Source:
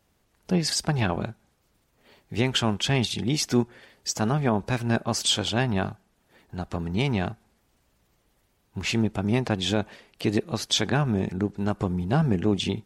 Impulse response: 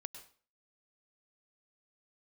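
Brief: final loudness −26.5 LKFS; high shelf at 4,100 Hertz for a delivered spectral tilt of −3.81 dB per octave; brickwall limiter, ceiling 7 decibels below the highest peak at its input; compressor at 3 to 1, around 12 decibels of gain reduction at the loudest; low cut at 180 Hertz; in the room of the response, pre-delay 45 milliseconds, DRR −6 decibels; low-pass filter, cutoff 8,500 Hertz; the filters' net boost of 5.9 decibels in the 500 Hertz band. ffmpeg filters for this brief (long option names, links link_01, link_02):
-filter_complex "[0:a]highpass=180,lowpass=8500,equalizer=frequency=500:width_type=o:gain=8,highshelf=frequency=4100:gain=6.5,acompressor=threshold=-32dB:ratio=3,alimiter=limit=-23.5dB:level=0:latency=1,asplit=2[link_01][link_02];[1:a]atrim=start_sample=2205,adelay=45[link_03];[link_02][link_03]afir=irnorm=-1:irlink=0,volume=9.5dB[link_04];[link_01][link_04]amix=inputs=2:normalize=0,volume=2.5dB"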